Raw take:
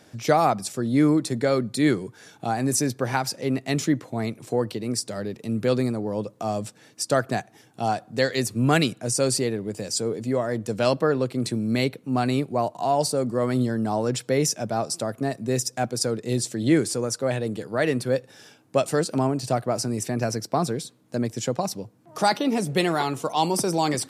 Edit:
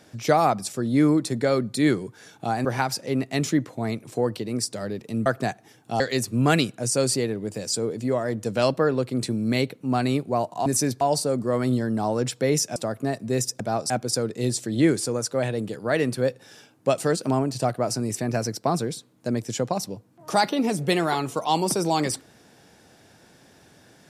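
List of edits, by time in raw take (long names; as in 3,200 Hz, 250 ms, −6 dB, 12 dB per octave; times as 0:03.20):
0:02.65–0:03.00: move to 0:12.89
0:05.61–0:07.15: remove
0:07.89–0:08.23: remove
0:14.64–0:14.94: move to 0:15.78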